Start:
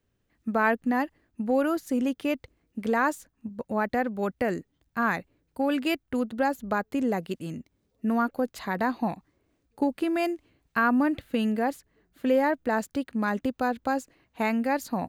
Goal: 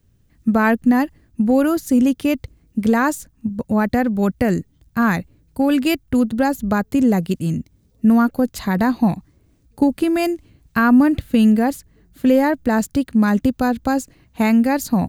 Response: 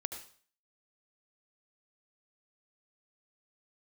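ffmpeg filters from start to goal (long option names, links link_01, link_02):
-af "bass=frequency=250:gain=14,treble=frequency=4000:gain=8,volume=5dB"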